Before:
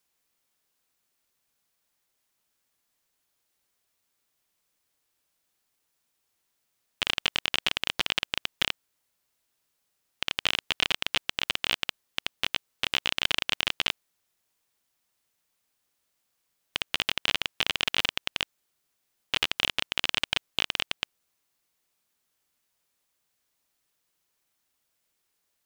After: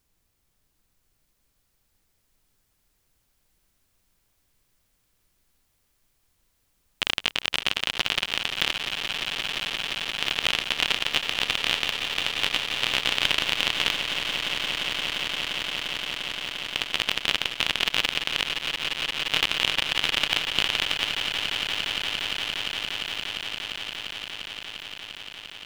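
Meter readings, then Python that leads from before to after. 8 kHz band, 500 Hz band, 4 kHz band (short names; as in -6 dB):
+5.5 dB, +5.5 dB, +5.5 dB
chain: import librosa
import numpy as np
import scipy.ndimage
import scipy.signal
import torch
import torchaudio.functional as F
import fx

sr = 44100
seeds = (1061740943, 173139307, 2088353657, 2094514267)

y = fx.echo_swell(x, sr, ms=174, loudest=8, wet_db=-11)
y = fx.dmg_noise_colour(y, sr, seeds[0], colour='brown', level_db=-74.0)
y = F.gain(torch.from_numpy(y), 2.0).numpy()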